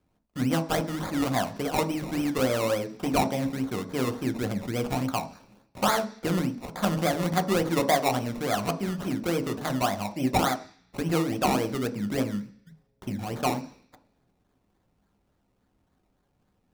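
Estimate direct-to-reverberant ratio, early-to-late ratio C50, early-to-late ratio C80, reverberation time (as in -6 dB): 7.0 dB, 14.5 dB, 17.5 dB, 0.50 s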